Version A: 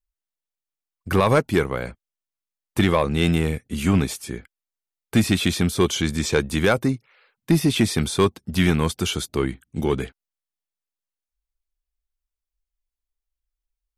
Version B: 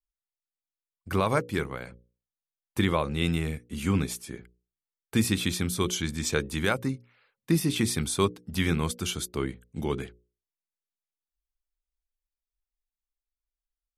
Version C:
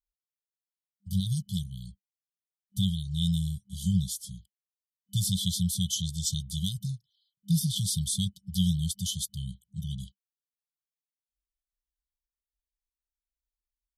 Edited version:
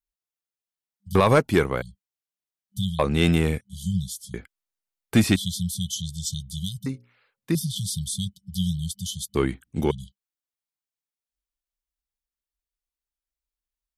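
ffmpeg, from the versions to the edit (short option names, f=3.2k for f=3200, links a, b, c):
-filter_complex "[0:a]asplit=4[a][b][c][d];[2:a]asplit=6[e][f][g][h][i][j];[e]atrim=end=1.152[k];[a]atrim=start=1.148:end=1.822[l];[f]atrim=start=1.818:end=2.992[m];[b]atrim=start=2.988:end=3.612[n];[g]atrim=start=3.608:end=4.342[o];[c]atrim=start=4.338:end=5.362[p];[h]atrim=start=5.358:end=6.862[q];[1:a]atrim=start=6.858:end=7.552[r];[i]atrim=start=7.548:end=9.352[s];[d]atrim=start=9.348:end=9.912[t];[j]atrim=start=9.908[u];[k][l]acrossfade=d=0.004:c1=hsin:c2=hsin[v];[v][m]acrossfade=d=0.004:c1=hsin:c2=hsin[w];[w][n]acrossfade=d=0.004:c1=hsin:c2=hsin[x];[x][o]acrossfade=d=0.004:c1=hsin:c2=hsin[y];[y][p]acrossfade=d=0.004:c1=hsin:c2=hsin[z];[z][q]acrossfade=d=0.004:c1=hsin:c2=hsin[aa];[aa][r]acrossfade=d=0.004:c1=hsin:c2=hsin[ab];[ab][s]acrossfade=d=0.004:c1=hsin:c2=hsin[ac];[ac][t]acrossfade=d=0.004:c1=hsin:c2=hsin[ad];[ad][u]acrossfade=d=0.004:c1=hsin:c2=hsin"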